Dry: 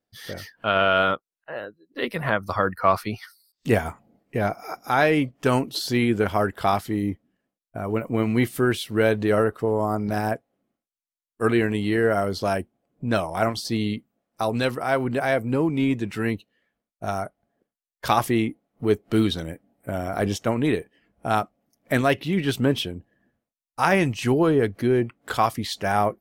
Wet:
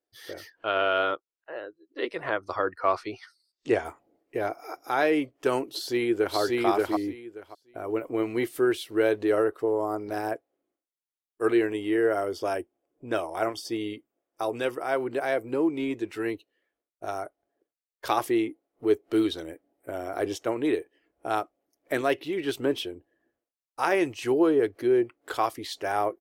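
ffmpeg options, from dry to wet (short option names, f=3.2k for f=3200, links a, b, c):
-filter_complex "[0:a]asettb=1/sr,asplit=3[a][b][c];[a]atrim=end=0.504[d];[b]atrim=start=0.5:end=3.85,asetpts=PTS-STARTPTS,afade=t=in:d=0.004:c=qsin,afade=t=out:st=3.346:d=0.004:c=qsin,lowpass=f=7.8k:w=0.5412,lowpass=f=7.8k:w=1.3066[e];[c]atrim=start=3.846[f];[d][e]acrossfade=d=0.004:c1=hsin:c2=qsin[g];[g][f]acrossfade=d=0.004:c1=qsin:c2=hsin,asplit=2[h][i];[i]afade=t=in:st=5.67:d=0.01,afade=t=out:st=6.38:d=0.01,aecho=0:1:580|1160|1740:0.944061|0.141609|0.0212414[j];[h][j]amix=inputs=2:normalize=0,asettb=1/sr,asplit=3[k][l][m];[k]atrim=end=11.664[n];[l]atrim=start=11.66:end=14.97,asetpts=PTS-STARTPTS,afade=t=in:d=0.004:c=qsin,afade=t=out:st=3.306:d=0.004:c=qsin,asuperstop=centerf=4100:order=12:qfactor=7.4[o];[m]atrim=start=14.966[p];[n][o]acrossfade=d=0.004:c1=hsin:c2=qsin[q];[q][p]acrossfade=d=0.004:c1=qsin:c2=hsin,lowshelf=f=260:t=q:w=3:g=-8.5,volume=-6dB"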